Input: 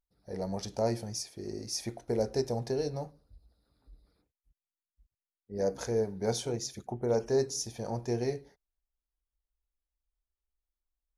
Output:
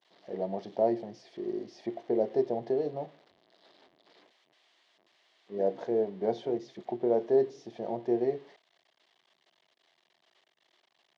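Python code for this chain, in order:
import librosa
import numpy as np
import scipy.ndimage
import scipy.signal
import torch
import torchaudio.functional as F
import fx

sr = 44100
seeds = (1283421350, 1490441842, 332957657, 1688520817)

y = x + 0.5 * 10.0 ** (-31.5 / 20.0) * np.diff(np.sign(x), prepend=np.sign(x[:1]))
y = fx.quant_companded(y, sr, bits=8)
y = fx.cabinet(y, sr, low_hz=160.0, low_slope=24, high_hz=3000.0, hz=(360.0, 660.0, 1400.0, 2500.0), db=(9, 9, -9, -9))
y = y * librosa.db_to_amplitude(-2.0)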